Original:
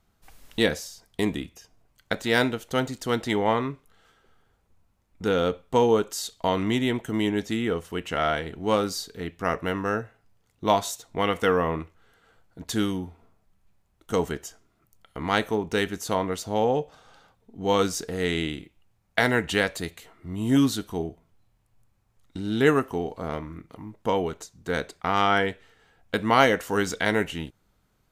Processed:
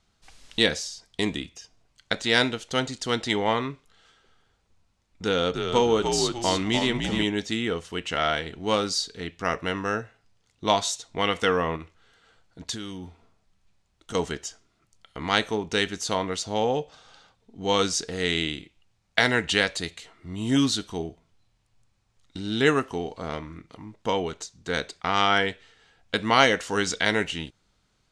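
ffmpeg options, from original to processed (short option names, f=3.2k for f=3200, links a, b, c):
-filter_complex "[0:a]asettb=1/sr,asplit=3[a][b][c];[a]atrim=end=5.244[d];[b]atrim=start=5.24:end=7.24,asetpts=PTS-STARTPTS,afade=t=in:d=0.004:c=qsin,afade=t=out:st=1.996:d=0.004:c=qsin,asplit=5[e][f][g][h][i];[f]adelay=299,afreqshift=-65,volume=-5dB[j];[g]adelay=598,afreqshift=-130,volume=-14.1dB[k];[h]adelay=897,afreqshift=-195,volume=-23.2dB[l];[i]adelay=1196,afreqshift=-260,volume=-32.4dB[m];[e][j][k][l][m]amix=inputs=5:normalize=0,atrim=end_sample=88200[n];[c]atrim=start=7.236[o];[d][n]acrossfade=d=0.004:c1=hsin:c2=qsin[p];[p][o]acrossfade=d=0.004:c1=qsin:c2=hsin,asettb=1/sr,asplit=3[q][r][s];[q]atrim=end=11.764[t];[r]atrim=start=11.76:end=14.15,asetpts=PTS-STARTPTS,afade=t=in:d=0.004:c=qsin,afade=t=out:st=2.386:d=0.004:c=qsin,acompressor=threshold=-31dB:ratio=6:attack=3.2:release=140:knee=1:detection=peak[u];[s]atrim=start=14.146[v];[t][u]acrossfade=d=0.004:c1=hsin:c2=qsin[w];[w][v]acrossfade=d=0.004:c1=qsin:c2=hsin,lowpass=f=9.4k:w=0.5412,lowpass=f=9.4k:w=1.3066,equalizer=f=4.4k:t=o:w=2.1:g=9,volume=-2dB"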